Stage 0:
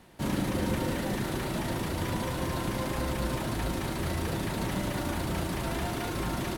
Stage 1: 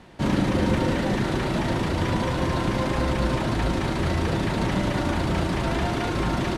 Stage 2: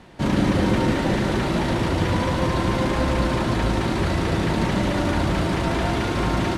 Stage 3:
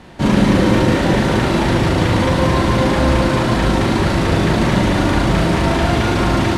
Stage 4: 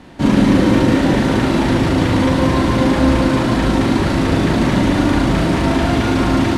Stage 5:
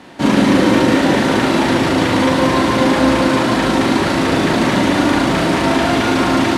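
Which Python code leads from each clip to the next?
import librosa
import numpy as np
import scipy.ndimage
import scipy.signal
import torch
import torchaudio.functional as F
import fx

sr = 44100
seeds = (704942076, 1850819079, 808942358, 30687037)

y1 = fx.air_absorb(x, sr, metres=75.0)
y1 = y1 * librosa.db_to_amplitude(7.5)
y2 = y1 + 10.0 ** (-5.5 / 20.0) * np.pad(y1, (int(164 * sr / 1000.0), 0))[:len(y1)]
y2 = y2 * librosa.db_to_amplitude(1.5)
y3 = fx.doubler(y2, sr, ms=42.0, db=-4)
y3 = y3 * librosa.db_to_amplitude(5.5)
y4 = fx.peak_eq(y3, sr, hz=270.0, db=9.5, octaves=0.28)
y4 = y4 * librosa.db_to_amplitude(-1.5)
y5 = fx.highpass(y4, sr, hz=350.0, slope=6)
y5 = y5 * librosa.db_to_amplitude(4.5)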